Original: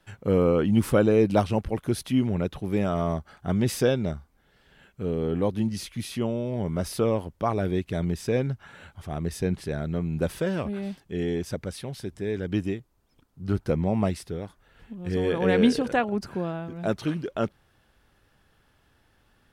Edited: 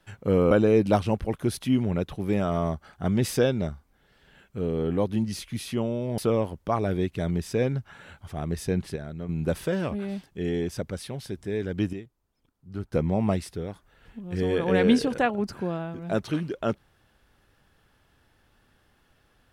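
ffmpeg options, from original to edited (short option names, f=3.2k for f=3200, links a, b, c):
-filter_complex "[0:a]asplit=7[a][b][c][d][e][f][g];[a]atrim=end=0.512[h];[b]atrim=start=0.948:end=6.622[i];[c]atrim=start=6.918:end=9.702[j];[d]atrim=start=9.698:end=10.032,asetpts=PTS-STARTPTS,volume=-7dB[k];[e]atrim=start=10.028:end=12.672[l];[f]atrim=start=12.668:end=13.672,asetpts=PTS-STARTPTS,volume=-8dB[m];[g]atrim=start=13.668[n];[h][i]acrossfade=d=0.004:c1=hsin:c2=hsin[o];[o][j]acrossfade=d=0.004:c1=hsin:c2=hsin[p];[p][k]acrossfade=d=0.004:c1=hsin:c2=hsin[q];[q][l]acrossfade=d=0.004:c1=hsin:c2=hsin[r];[r][m]acrossfade=d=0.004:c1=hsin:c2=hsin[s];[s][n]acrossfade=d=0.004:c1=hsin:c2=hsin"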